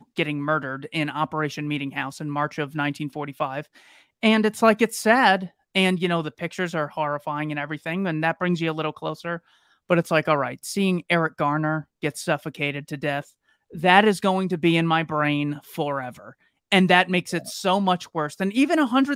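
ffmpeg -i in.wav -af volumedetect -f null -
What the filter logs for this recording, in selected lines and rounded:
mean_volume: -23.5 dB
max_volume: -1.6 dB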